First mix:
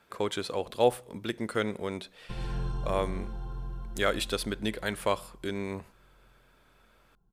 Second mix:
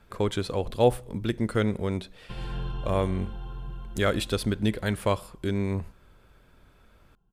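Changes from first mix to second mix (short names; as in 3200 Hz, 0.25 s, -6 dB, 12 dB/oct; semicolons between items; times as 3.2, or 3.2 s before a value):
speech: remove HPF 460 Hz 6 dB/oct; background: add synth low-pass 3000 Hz, resonance Q 3.4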